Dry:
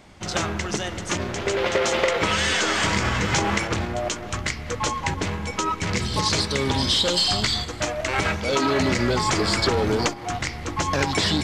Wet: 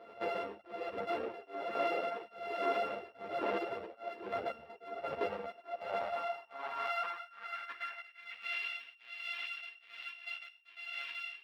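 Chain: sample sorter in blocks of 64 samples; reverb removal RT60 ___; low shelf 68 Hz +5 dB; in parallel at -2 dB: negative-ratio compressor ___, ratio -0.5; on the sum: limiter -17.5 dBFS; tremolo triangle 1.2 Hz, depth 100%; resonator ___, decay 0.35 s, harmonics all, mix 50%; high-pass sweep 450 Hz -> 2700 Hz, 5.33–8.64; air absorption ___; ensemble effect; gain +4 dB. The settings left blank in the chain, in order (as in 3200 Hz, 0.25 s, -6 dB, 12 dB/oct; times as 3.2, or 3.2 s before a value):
0.94 s, -28 dBFS, 910 Hz, 400 m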